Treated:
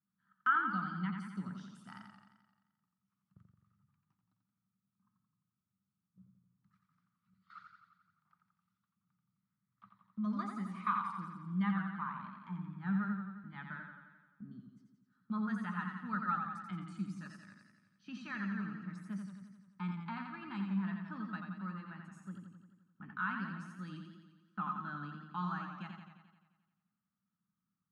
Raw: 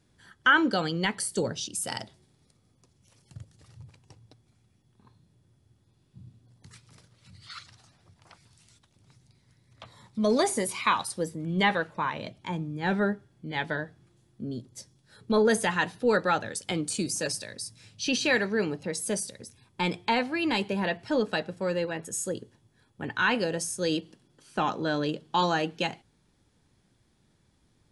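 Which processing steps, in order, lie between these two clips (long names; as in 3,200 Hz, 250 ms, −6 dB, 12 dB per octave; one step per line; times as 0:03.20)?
pair of resonant band-passes 490 Hz, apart 2.7 octaves
noise gate −57 dBFS, range −9 dB
feedback echo with a swinging delay time 87 ms, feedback 63%, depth 61 cents, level −5.5 dB
level −3 dB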